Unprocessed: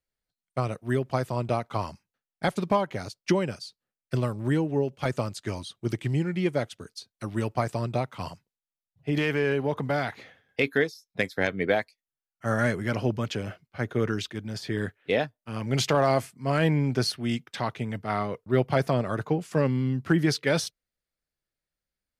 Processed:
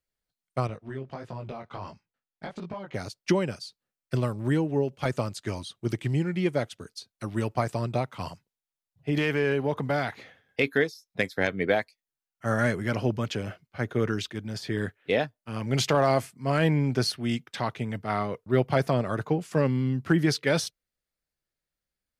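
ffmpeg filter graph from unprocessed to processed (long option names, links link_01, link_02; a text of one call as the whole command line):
ffmpeg -i in.wav -filter_complex "[0:a]asettb=1/sr,asplit=3[link_01][link_02][link_03];[link_01]atrim=end=0.674[link_04];[link_02]atrim=start=0.67:end=2.94,asetpts=PTS-STARTPTS,afade=type=in:duration=0.004:curve=qsin,afade=type=out:start_time=2.266:duration=0.004:curve=qsin,acompressor=threshold=-28dB:ratio=10:attack=3.2:release=140:knee=1:detection=peak,flanger=delay=17.5:depth=5.3:speed=1.5,lowpass=4700[link_05];[link_03]atrim=start=2.936[link_06];[link_04][link_05]acrossfade=duration=0.004:curve1=hsin:curve2=qsin[link_07];[link_07][link_06]acrossfade=duration=0.004:curve1=qsin:curve2=hsin" out.wav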